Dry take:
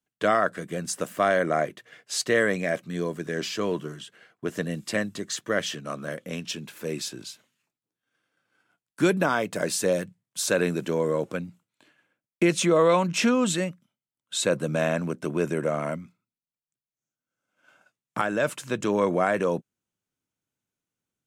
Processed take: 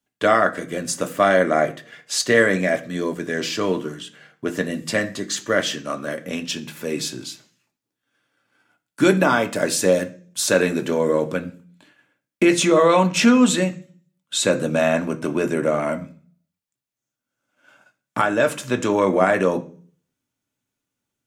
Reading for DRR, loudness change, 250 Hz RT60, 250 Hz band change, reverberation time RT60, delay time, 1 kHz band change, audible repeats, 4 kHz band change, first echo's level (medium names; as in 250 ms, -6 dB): 4.5 dB, +6.0 dB, 0.60 s, +7.0 dB, 0.45 s, no echo, +6.0 dB, no echo, +6.0 dB, no echo